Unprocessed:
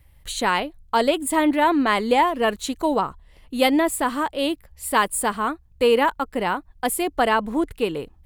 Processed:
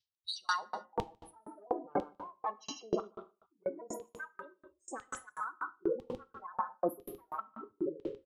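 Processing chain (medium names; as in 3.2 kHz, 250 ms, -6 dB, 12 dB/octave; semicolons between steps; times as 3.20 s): pitch shift switched off and on -6 st, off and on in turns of 123 ms; spectral gate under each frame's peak -10 dB strong; low-pass that closes with the level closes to 2 kHz, closed at -16.5 dBFS; formant shift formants +4 st; resonant high shelf 6.6 kHz -9 dB, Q 3; reverse; compression 6:1, threshold -33 dBFS, peak gain reduction 17 dB; reverse; LFO high-pass saw down 1 Hz 320–3200 Hz; tone controls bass +15 dB, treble +12 dB; on a send: delay 149 ms -9.5 dB; on the sum: gated-style reverb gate 330 ms falling, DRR 6.5 dB; sawtooth tremolo in dB decaying 4.1 Hz, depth 36 dB; trim +3.5 dB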